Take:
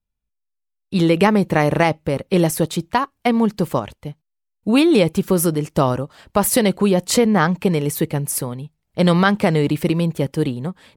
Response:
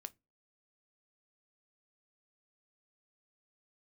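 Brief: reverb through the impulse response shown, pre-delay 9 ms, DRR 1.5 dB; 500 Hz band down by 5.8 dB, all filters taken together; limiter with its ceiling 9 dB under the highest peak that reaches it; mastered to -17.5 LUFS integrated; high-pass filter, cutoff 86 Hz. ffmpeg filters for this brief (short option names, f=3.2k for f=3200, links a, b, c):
-filter_complex "[0:a]highpass=86,equalizer=f=500:t=o:g=-7.5,alimiter=limit=-13dB:level=0:latency=1,asplit=2[a][b];[1:a]atrim=start_sample=2205,adelay=9[c];[b][c]afir=irnorm=-1:irlink=0,volume=3.5dB[d];[a][d]amix=inputs=2:normalize=0,volume=3.5dB"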